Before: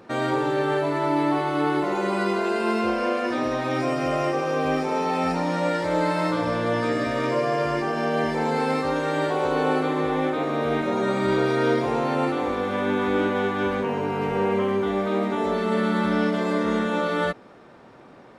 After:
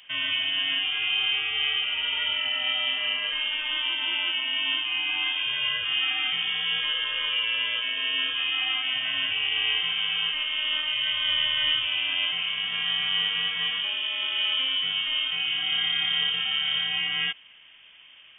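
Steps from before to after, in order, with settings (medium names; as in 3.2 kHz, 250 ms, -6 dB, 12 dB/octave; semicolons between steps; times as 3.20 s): frequency inversion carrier 3.4 kHz; trim -3.5 dB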